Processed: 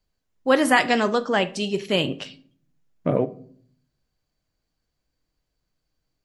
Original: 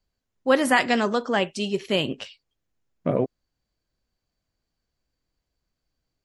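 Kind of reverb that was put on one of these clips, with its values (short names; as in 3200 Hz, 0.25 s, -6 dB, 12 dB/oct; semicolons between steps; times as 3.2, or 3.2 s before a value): shoebox room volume 700 m³, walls furnished, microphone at 0.5 m; gain +1.5 dB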